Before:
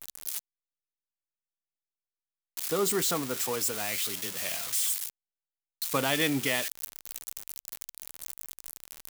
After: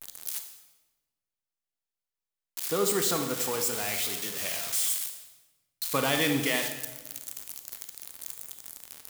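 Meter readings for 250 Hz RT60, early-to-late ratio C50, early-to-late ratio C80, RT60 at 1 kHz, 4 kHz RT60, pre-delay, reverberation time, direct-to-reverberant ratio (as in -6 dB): 1.5 s, 7.0 dB, 9.0 dB, 1.1 s, 0.95 s, 27 ms, 1.2 s, 5.5 dB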